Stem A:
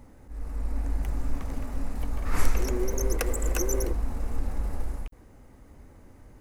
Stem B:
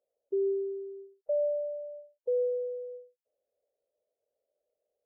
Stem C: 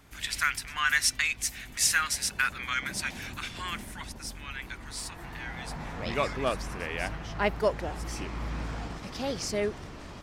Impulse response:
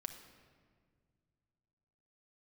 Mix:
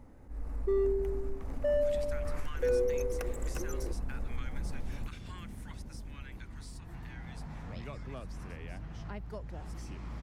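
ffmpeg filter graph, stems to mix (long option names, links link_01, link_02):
-filter_complex "[0:a]acompressor=threshold=-28dB:ratio=6,volume=-3dB[link_01];[1:a]asoftclip=type=hard:threshold=-26dB,adelay=350,volume=0.5dB[link_02];[2:a]bass=frequency=250:gain=12,treble=frequency=4000:gain=6,acrossover=split=160|540[link_03][link_04][link_05];[link_03]acompressor=threshold=-32dB:ratio=4[link_06];[link_04]acompressor=threshold=-39dB:ratio=4[link_07];[link_05]acompressor=threshold=-37dB:ratio=4[link_08];[link_06][link_07][link_08]amix=inputs=3:normalize=0,adelay=1700,volume=-9.5dB[link_09];[link_01][link_02][link_09]amix=inputs=3:normalize=0,highshelf=frequency=2900:gain=-8"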